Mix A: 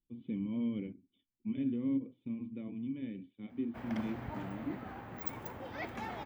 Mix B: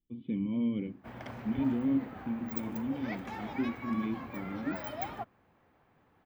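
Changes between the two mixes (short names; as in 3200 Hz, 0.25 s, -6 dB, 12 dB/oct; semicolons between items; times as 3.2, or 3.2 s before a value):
speech +4.0 dB; background: entry -2.70 s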